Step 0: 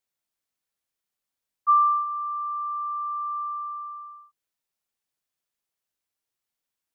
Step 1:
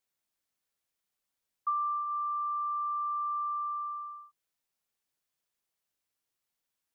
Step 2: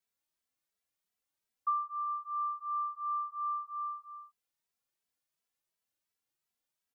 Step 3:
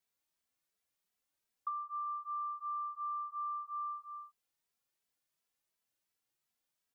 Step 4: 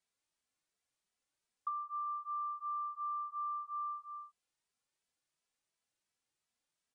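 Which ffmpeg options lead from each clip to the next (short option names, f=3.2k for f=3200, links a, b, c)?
-af "acompressor=threshold=-31dB:ratio=5"
-filter_complex "[0:a]asplit=2[a][b];[b]adelay=2.7,afreqshift=2.8[c];[a][c]amix=inputs=2:normalize=1"
-af "acompressor=threshold=-38dB:ratio=6,volume=1dB"
-af "aresample=22050,aresample=44100"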